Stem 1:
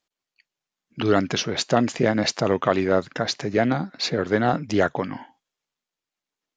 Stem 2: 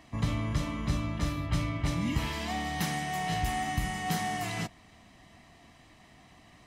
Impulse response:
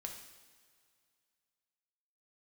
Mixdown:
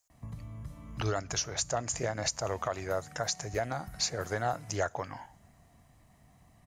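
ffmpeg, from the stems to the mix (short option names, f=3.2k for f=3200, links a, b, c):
-filter_complex "[0:a]firequalizer=gain_entry='entry(100,0);entry(190,-18);entry(650,-2);entry(3400,-9);entry(6800,12)':delay=0.05:min_phase=1,volume=-1dB,asplit=2[a][b];[b]volume=-20dB[c];[1:a]acompressor=threshold=-39dB:ratio=6,firequalizer=gain_entry='entry(130,0);entry(330,-12);entry(500,-6);entry(2900,-16);entry(11000,2)':delay=0.05:min_phase=1,adelay=100,volume=0dB[d];[2:a]atrim=start_sample=2205[e];[c][e]afir=irnorm=-1:irlink=0[f];[a][d][f]amix=inputs=3:normalize=0,alimiter=limit=-19dB:level=0:latency=1:release=474"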